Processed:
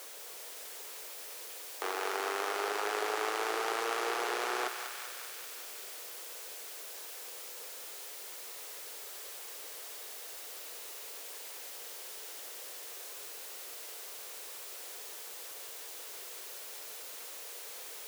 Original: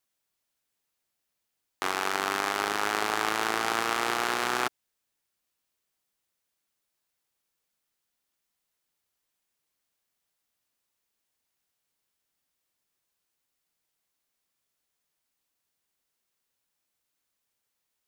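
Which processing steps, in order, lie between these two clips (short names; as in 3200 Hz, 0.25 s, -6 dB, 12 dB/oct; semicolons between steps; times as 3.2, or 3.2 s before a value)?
zero-crossing step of -31 dBFS; ladder high-pass 390 Hz, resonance 55%; thinning echo 0.194 s, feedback 81%, high-pass 1000 Hz, level -6 dB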